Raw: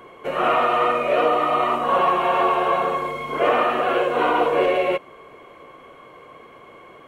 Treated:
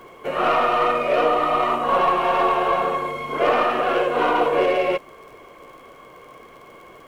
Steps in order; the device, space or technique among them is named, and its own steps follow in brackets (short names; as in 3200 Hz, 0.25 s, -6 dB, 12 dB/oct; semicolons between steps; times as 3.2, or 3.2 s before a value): record under a worn stylus (tracing distortion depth 0.029 ms; crackle 53/s -41 dBFS; pink noise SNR 40 dB)